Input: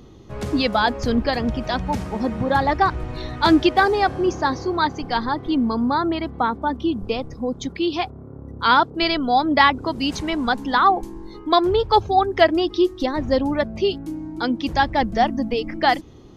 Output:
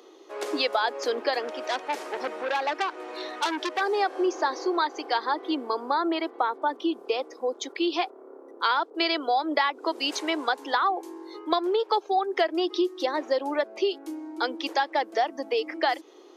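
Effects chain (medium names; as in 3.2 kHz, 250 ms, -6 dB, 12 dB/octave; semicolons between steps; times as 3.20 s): steep high-pass 330 Hz 48 dB/octave; compression 6:1, threshold -21 dBFS, peak gain reduction 11.5 dB; 1.40–3.81 s: transformer saturation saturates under 3.3 kHz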